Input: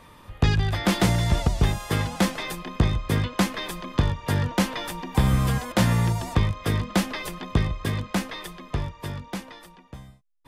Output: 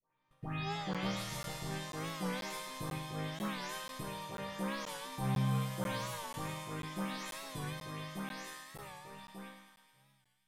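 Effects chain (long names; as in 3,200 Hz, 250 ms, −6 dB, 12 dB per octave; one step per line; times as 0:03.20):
every frequency bin delayed by itself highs late, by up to 299 ms
mains-hum notches 50/100/150 Hz
noise gate −38 dBFS, range −16 dB
low-shelf EQ 350 Hz −6.5 dB
resonators tuned to a chord C3 minor, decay 0.79 s
feedback echo with a high-pass in the loop 106 ms, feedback 79%, high-pass 770 Hz, level −7 dB
on a send at −21.5 dB: convolution reverb RT60 1.8 s, pre-delay 5 ms
on the sum: regular buffer underruns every 0.49 s, samples 512, zero, from 0:00.94
wow of a warped record 45 rpm, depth 100 cents
level +7 dB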